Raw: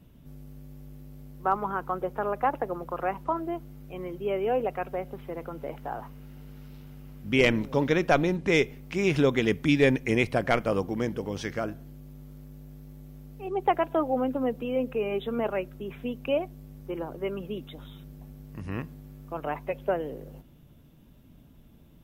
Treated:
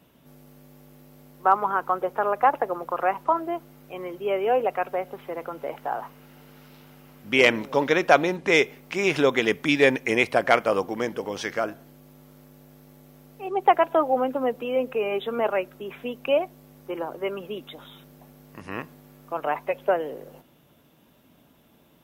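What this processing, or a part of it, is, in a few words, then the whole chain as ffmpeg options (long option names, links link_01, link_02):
filter by subtraction: -filter_complex "[0:a]asplit=2[link_01][link_02];[link_02]lowpass=800,volume=-1[link_03];[link_01][link_03]amix=inputs=2:normalize=0,volume=5dB"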